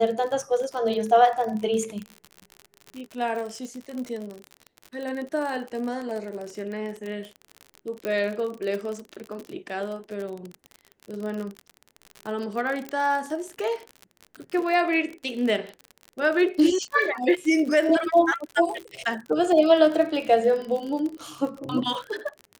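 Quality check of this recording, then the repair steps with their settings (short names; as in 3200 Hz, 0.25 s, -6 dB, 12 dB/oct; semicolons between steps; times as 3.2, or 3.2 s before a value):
crackle 46/s -30 dBFS
8.05 pop -16 dBFS
12.89 pop -18 dBFS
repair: de-click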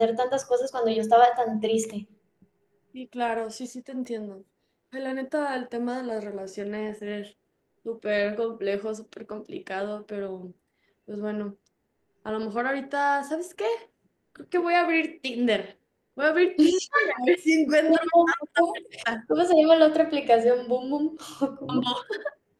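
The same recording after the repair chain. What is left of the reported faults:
none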